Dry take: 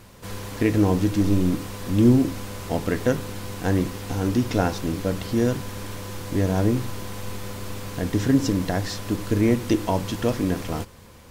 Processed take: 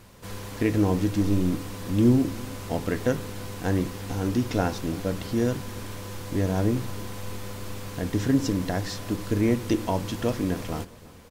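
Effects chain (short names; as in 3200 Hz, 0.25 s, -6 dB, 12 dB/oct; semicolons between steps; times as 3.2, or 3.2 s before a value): feedback echo 0.331 s, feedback 45%, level -21.5 dB; gain -3 dB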